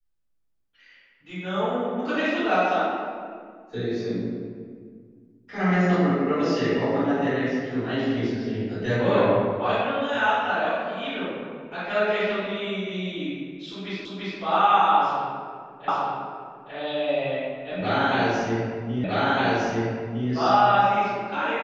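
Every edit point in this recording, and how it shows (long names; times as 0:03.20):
0:14.05: the same again, the last 0.34 s
0:15.88: the same again, the last 0.86 s
0:19.04: the same again, the last 1.26 s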